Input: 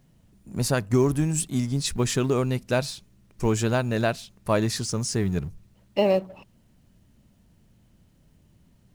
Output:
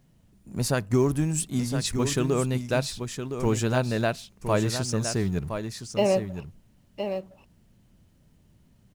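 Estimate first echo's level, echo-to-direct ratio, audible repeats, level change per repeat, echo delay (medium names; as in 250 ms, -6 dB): -8.0 dB, -8.0 dB, 1, no regular repeats, 1014 ms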